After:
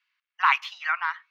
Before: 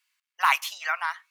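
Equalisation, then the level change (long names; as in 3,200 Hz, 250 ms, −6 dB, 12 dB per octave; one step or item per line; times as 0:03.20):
high-pass filter 960 Hz 24 dB per octave
high-frequency loss of the air 270 metres
+4.0 dB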